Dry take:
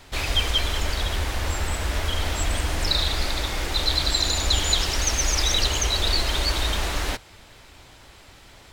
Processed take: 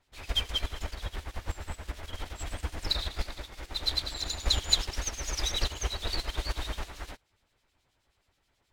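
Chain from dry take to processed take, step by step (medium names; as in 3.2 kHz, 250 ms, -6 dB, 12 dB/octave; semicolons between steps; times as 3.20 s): harmonic tremolo 9.4 Hz, depth 70%, crossover 2.4 kHz; upward expansion 2.5:1, over -34 dBFS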